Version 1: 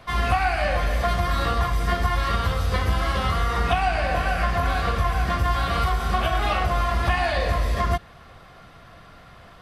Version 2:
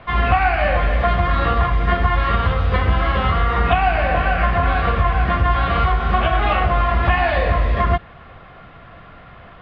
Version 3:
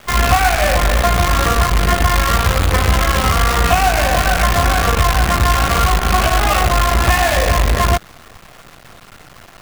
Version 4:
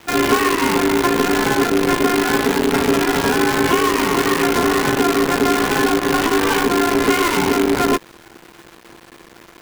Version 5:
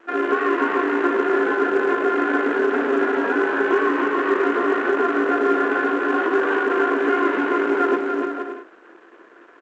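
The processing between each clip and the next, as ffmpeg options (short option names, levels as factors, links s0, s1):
-af "lowpass=f=3100:w=0.5412,lowpass=f=3100:w=1.3066,volume=1.88"
-af "acrusher=bits=4:dc=4:mix=0:aa=0.000001,volume=1.33"
-af "aeval=exprs='val(0)*sin(2*PI*340*n/s)':c=same"
-af "highpass=f=310:w=0.5412,highpass=f=310:w=1.3066,equalizer=f=340:t=q:w=4:g=6,equalizer=f=850:t=q:w=4:g=-6,equalizer=f=1500:t=q:w=4:g=5,equalizer=f=2200:t=q:w=4:g=-7,lowpass=f=2300:w=0.5412,lowpass=f=2300:w=1.3066,aecho=1:1:290|464|568.4|631|668.6:0.631|0.398|0.251|0.158|0.1,volume=0.562" -ar 16000 -c:a pcm_alaw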